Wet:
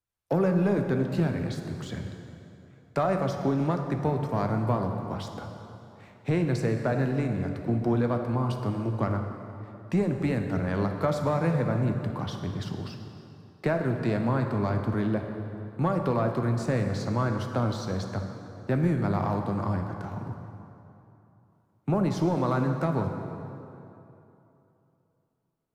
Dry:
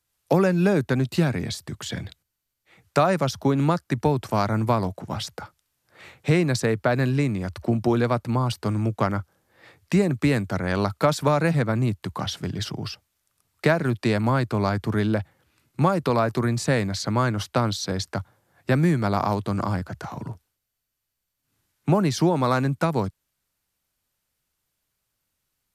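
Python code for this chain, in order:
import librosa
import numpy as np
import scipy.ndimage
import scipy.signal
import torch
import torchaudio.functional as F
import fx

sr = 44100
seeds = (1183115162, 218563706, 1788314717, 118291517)

y = fx.leveller(x, sr, passes=1)
y = fx.high_shelf(y, sr, hz=2100.0, db=-10.5)
y = fx.rev_plate(y, sr, seeds[0], rt60_s=3.0, hf_ratio=0.7, predelay_ms=0, drr_db=4.0)
y = y * librosa.db_to_amplitude(-8.0)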